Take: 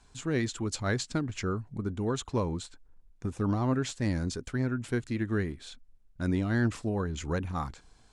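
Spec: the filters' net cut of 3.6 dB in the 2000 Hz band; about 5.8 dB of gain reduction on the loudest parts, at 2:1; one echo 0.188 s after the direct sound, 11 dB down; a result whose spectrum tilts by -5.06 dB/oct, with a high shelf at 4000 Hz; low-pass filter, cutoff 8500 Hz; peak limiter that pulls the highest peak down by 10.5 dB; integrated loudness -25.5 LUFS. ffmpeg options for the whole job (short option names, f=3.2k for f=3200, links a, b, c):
-af "lowpass=8.5k,equalizer=f=2k:t=o:g=-6.5,highshelf=f=4k:g=8.5,acompressor=threshold=-34dB:ratio=2,alimiter=level_in=8dB:limit=-24dB:level=0:latency=1,volume=-8dB,aecho=1:1:188:0.282,volume=15.5dB"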